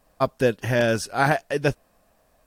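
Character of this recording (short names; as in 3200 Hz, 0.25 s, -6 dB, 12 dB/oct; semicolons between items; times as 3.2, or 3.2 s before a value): noise floor -64 dBFS; spectral tilt -4.5 dB/oct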